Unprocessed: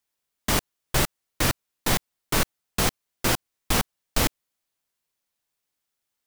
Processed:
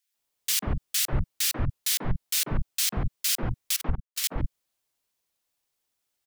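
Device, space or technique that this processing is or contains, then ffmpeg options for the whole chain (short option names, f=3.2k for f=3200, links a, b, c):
one-band saturation: -filter_complex "[0:a]asettb=1/sr,asplit=3[a][b][c];[a]atrim=end=3.764[d];[b]atrim=start=3.76:end=4.24,asetpts=PTS-STARTPTS,afade=t=in:d=0.004:c=qsin,afade=t=out:st=0.476:d=0.004:c=qsin,agate=range=-25dB:threshold=-19dB:ratio=16:detection=peak[e];[c]atrim=start=4.236[f];[d][e]acrossfade=d=0.004:c1=hsin:c2=qsin[g];[g][f]acrossfade=d=0.004:c1=qsin:c2=hsin,acrossover=split=210|2800[h][i][j];[i]asoftclip=type=tanh:threshold=-36.5dB[k];[h][k][j]amix=inputs=3:normalize=0,acrossover=split=190|1600[l][m][n];[m]adelay=140[o];[l]adelay=180[p];[p][o][n]amix=inputs=3:normalize=0,volume=2dB"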